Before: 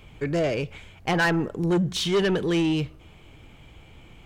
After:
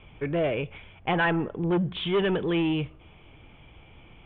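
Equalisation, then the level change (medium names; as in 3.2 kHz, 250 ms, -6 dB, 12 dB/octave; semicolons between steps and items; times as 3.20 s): rippled Chebyshev low-pass 3.5 kHz, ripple 3 dB; 0.0 dB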